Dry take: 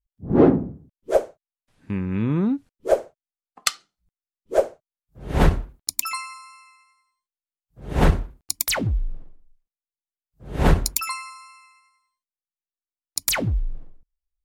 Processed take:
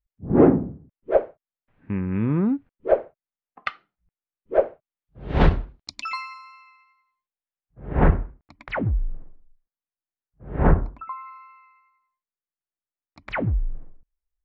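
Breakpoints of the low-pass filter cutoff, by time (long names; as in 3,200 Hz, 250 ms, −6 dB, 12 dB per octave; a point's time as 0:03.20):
low-pass filter 24 dB per octave
0:04.63 2,400 Hz
0:05.42 4,300 Hz
0:06.35 4,300 Hz
0:07.95 2,000 Hz
0:10.53 2,000 Hz
0:11.07 1,100 Hz
0:11.35 2,100 Hz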